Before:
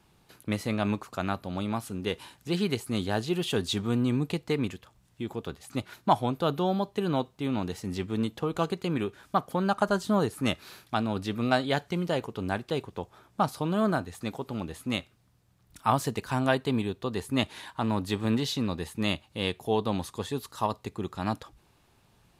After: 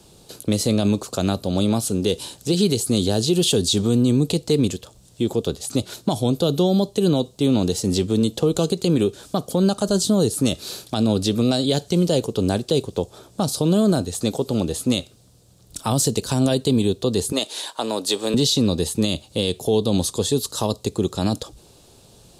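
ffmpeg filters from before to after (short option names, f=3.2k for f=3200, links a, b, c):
-filter_complex "[0:a]asettb=1/sr,asplit=3[a][b][c];[a]atrim=end=17.324[d];[b]atrim=start=17.32:end=18.34,asetpts=PTS-STARTPTS,afade=t=in:d=0.004:c=qsin,afade=t=out:st=1.016:d=0.004:c=qsin,highpass=480[e];[c]atrim=start=18.336[f];[d][e]acrossfade=d=0.004:c1=hsin:c2=qsin[g];[g][f]acrossfade=d=0.004:c1=qsin:c2=hsin,equalizer=f=500:t=o:w=1:g=8,equalizer=f=1k:t=o:w=1:g=-5,equalizer=f=2k:t=o:w=1:g=-10,equalizer=f=4k:t=o:w=1:g=6,equalizer=f=8k:t=o:w=1:g=9,acrossover=split=330|3000[h][i][j];[i]acompressor=threshold=-38dB:ratio=2[k];[h][k][j]amix=inputs=3:normalize=0,alimiter=level_in=20dB:limit=-1dB:release=50:level=0:latency=1,volume=-8.5dB"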